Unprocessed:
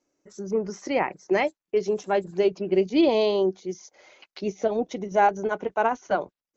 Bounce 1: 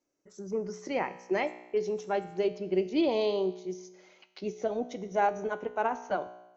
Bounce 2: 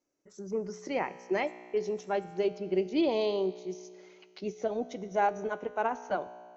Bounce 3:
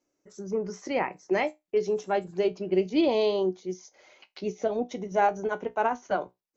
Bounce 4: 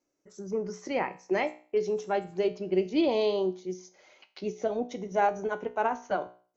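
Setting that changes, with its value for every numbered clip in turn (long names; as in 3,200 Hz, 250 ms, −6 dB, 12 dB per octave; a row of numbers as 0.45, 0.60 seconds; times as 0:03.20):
tuned comb filter, decay: 0.98, 2.1, 0.18, 0.41 seconds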